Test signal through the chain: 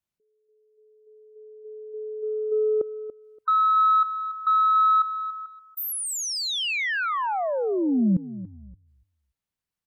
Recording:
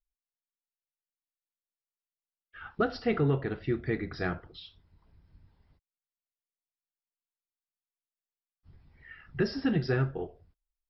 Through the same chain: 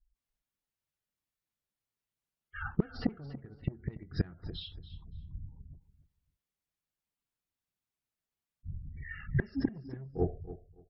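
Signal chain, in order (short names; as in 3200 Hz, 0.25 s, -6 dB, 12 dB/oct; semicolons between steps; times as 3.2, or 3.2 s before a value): spectral gate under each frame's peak -20 dB strong; tone controls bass +11 dB, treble -4 dB; added harmonics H 2 -40 dB, 5 -16 dB, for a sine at -9.5 dBFS; flipped gate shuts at -16 dBFS, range -28 dB; on a send: feedback echo 0.286 s, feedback 18%, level -15 dB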